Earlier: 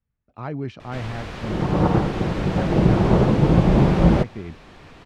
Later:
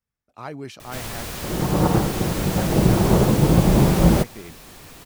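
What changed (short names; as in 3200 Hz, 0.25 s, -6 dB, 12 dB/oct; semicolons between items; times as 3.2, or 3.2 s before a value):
speech: add low shelf 260 Hz -11.5 dB; master: remove LPF 3000 Hz 12 dB/oct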